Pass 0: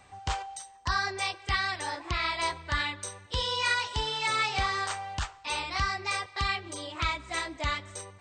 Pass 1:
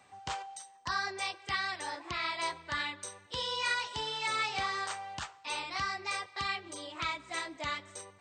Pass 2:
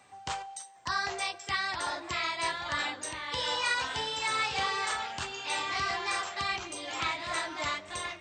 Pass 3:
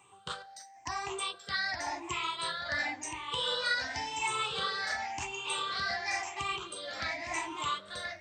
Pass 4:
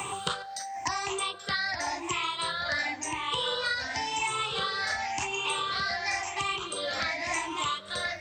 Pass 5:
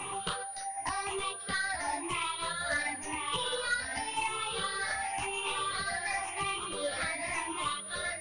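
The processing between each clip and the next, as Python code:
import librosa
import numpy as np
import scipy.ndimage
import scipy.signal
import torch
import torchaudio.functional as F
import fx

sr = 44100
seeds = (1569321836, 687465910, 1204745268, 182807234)

y1 = scipy.signal.sosfilt(scipy.signal.butter(2, 150.0, 'highpass', fs=sr, output='sos'), x)
y1 = y1 * 10.0 ** (-4.5 / 20.0)
y2 = fx.peak_eq(y1, sr, hz=8000.0, db=2.5, octaves=0.77)
y2 = fx.hum_notches(y2, sr, base_hz=50, count=4)
y2 = fx.echo_pitch(y2, sr, ms=761, semitones=-2, count=3, db_per_echo=-6.0)
y2 = y2 * 10.0 ** (2.0 / 20.0)
y3 = fx.spec_ripple(y2, sr, per_octave=0.68, drift_hz=0.93, depth_db=16)
y3 = y3 * 10.0 ** (-5.0 / 20.0)
y4 = fx.band_squash(y3, sr, depth_pct=100)
y4 = y4 * 10.0 ** (3.0 / 20.0)
y5 = fx.tracing_dist(y4, sr, depth_ms=0.021)
y5 = fx.chorus_voices(y5, sr, voices=6, hz=0.62, base_ms=14, depth_ms=3.8, mix_pct=50)
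y5 = fx.pwm(y5, sr, carrier_hz=9600.0)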